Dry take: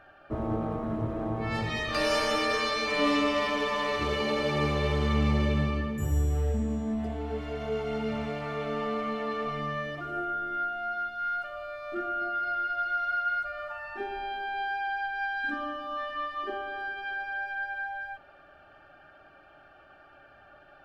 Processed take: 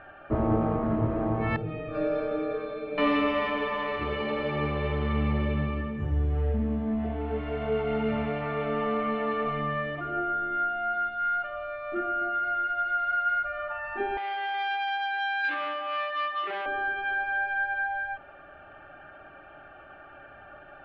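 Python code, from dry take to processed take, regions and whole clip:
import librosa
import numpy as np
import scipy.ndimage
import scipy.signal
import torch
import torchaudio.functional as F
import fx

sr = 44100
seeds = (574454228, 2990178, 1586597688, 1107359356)

y = fx.chain(x, sr, fx.moving_average(points=45),
    fx.tilt_eq(slope=2.0),
    fx.comb(ms=6.5, depth=0.75), at=(1.56, 2.98))
y = fx.chain(y, sr, fx.highpass(hz=400.0, slope=24),
    fx.transformer_sat(knee_hz=2800.0), at=(14.17, 16.66))
y = scipy.signal.sosfilt(scipy.signal.butter(4, 2900.0, 'lowpass', fs=sr, output='sos'), y)
y = fx.rider(y, sr, range_db=10, speed_s=2.0)
y = y * librosa.db_to_amplitude(2.0)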